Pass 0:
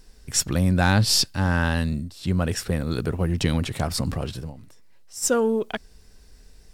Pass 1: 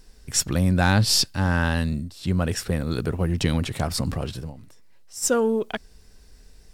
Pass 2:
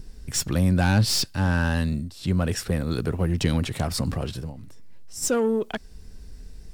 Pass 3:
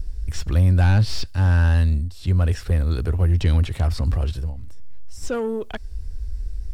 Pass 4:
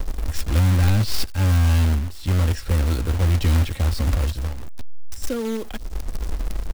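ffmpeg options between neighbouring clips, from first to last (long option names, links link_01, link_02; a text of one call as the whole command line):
ffmpeg -i in.wav -af anull out.wav
ffmpeg -i in.wav -filter_complex "[0:a]acrossover=split=330[link_01][link_02];[link_01]acompressor=mode=upward:threshold=-29dB:ratio=2.5[link_03];[link_02]asoftclip=type=tanh:threshold=-19.5dB[link_04];[link_03][link_04]amix=inputs=2:normalize=0" out.wav
ffmpeg -i in.wav -filter_complex "[0:a]acrossover=split=4600[link_01][link_02];[link_02]acompressor=threshold=-43dB:ratio=4:attack=1:release=60[link_03];[link_01][link_03]amix=inputs=2:normalize=0,lowshelf=frequency=100:width_type=q:width=1.5:gain=13.5,volume=-1.5dB" out.wav
ffmpeg -i in.wav -filter_complex "[0:a]aecho=1:1:3.7:0.44,acrossover=split=450|2700[link_01][link_02][link_03];[link_02]alimiter=level_in=5.5dB:limit=-24dB:level=0:latency=1:release=205,volume=-5.5dB[link_04];[link_01][link_04][link_03]amix=inputs=3:normalize=0,acrusher=bits=3:mode=log:mix=0:aa=0.000001" out.wav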